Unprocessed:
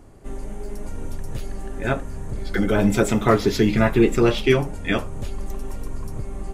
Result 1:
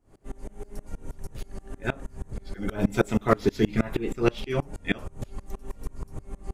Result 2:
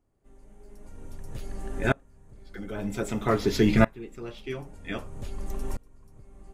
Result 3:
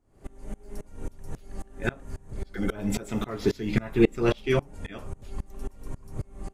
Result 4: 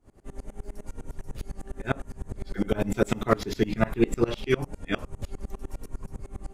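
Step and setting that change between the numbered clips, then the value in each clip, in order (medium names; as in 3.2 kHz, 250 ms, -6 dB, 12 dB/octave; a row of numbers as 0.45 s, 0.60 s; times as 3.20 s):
sawtooth tremolo in dB, rate: 6.3 Hz, 0.52 Hz, 3.7 Hz, 9.9 Hz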